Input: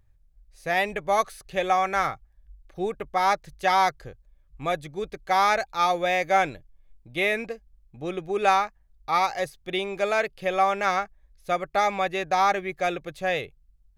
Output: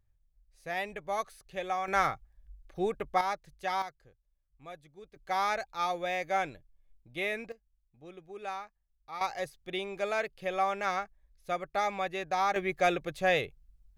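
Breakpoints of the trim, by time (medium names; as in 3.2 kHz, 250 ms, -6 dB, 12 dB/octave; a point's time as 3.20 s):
-10.5 dB
from 1.88 s -2.5 dB
from 3.21 s -11 dB
from 3.82 s -19.5 dB
from 5.16 s -9 dB
from 7.52 s -18 dB
from 9.21 s -7.5 dB
from 12.56 s -0.5 dB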